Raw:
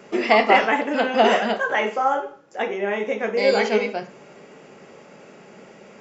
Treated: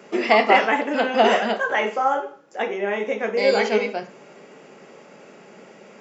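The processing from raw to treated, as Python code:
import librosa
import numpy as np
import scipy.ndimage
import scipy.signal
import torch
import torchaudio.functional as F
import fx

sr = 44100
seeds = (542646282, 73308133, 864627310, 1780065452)

y = scipy.signal.sosfilt(scipy.signal.butter(2, 160.0, 'highpass', fs=sr, output='sos'), x)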